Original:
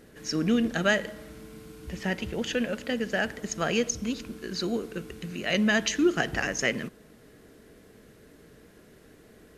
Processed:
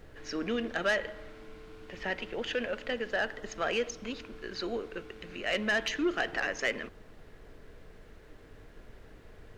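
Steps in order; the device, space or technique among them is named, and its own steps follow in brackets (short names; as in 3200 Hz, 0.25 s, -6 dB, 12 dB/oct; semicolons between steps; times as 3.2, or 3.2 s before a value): aircraft cabin announcement (BPF 410–3400 Hz; soft clip -21 dBFS, distortion -14 dB; brown noise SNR 15 dB); 3.1–3.5 notch 2300 Hz, Q 6.8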